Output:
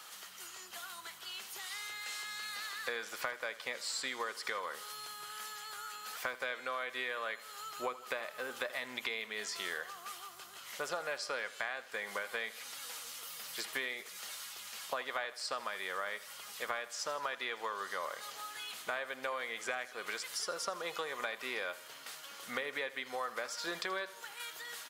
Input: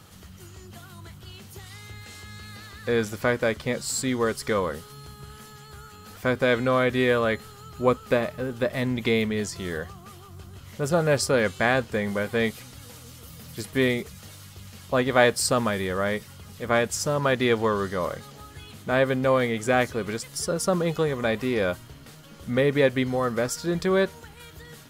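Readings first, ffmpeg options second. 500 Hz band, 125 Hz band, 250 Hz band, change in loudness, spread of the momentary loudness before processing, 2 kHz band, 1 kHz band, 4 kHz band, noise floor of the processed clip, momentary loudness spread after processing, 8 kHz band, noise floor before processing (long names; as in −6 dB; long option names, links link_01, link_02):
−19.0 dB, −36.0 dB, −27.0 dB, −15.0 dB, 22 LU, −9.0 dB, −10.5 dB, −6.5 dB, −52 dBFS, 7 LU, −9.5 dB, −47 dBFS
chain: -filter_complex "[0:a]acrossover=split=5100[link_01][link_02];[link_02]acompressor=threshold=-46dB:ratio=4:attack=1:release=60[link_03];[link_01][link_03]amix=inputs=2:normalize=0,highpass=930,acompressor=threshold=-38dB:ratio=12,aecho=1:1:80|160|240|320|400:0.141|0.0777|0.0427|0.0235|0.0129,volume=3.5dB"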